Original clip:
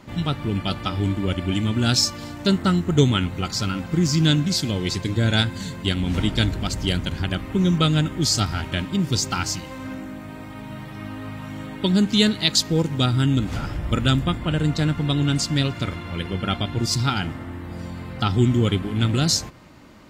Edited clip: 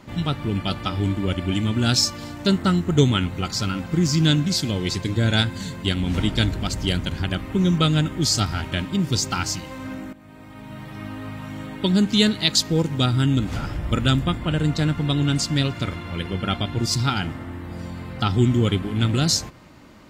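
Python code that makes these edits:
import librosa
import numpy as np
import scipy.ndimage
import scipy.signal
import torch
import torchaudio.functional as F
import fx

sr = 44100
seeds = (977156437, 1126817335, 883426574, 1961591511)

y = fx.edit(x, sr, fx.fade_in_from(start_s=10.13, length_s=0.83, floor_db=-14.0), tone=tone)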